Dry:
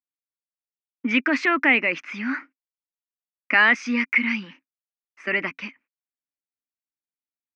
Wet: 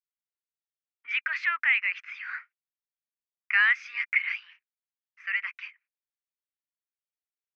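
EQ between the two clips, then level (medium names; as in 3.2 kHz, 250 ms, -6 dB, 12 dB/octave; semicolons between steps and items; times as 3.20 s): high-pass 1.5 kHz 24 dB/octave; low-pass 2 kHz 6 dB/octave; distance through air 75 m; 0.0 dB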